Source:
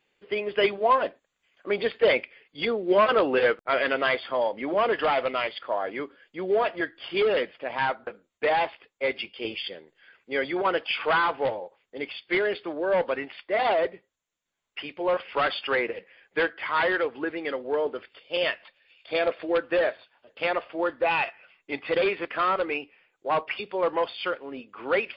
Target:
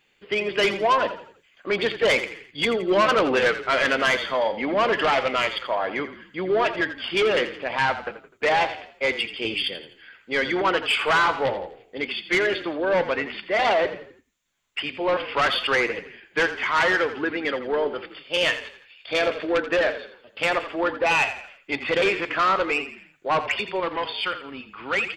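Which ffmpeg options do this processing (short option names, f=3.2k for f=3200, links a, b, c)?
-filter_complex "[0:a]asetnsamples=n=441:p=0,asendcmd='23.8 equalizer g -14',equalizer=f=500:t=o:w=2.3:g=-6,asoftclip=type=tanh:threshold=-23.5dB,asplit=5[a][b][c][d][e];[b]adelay=84,afreqshift=-33,volume=-12dB[f];[c]adelay=168,afreqshift=-66,volume=-19.5dB[g];[d]adelay=252,afreqshift=-99,volume=-27.1dB[h];[e]adelay=336,afreqshift=-132,volume=-34.6dB[i];[a][f][g][h][i]amix=inputs=5:normalize=0,volume=9dB"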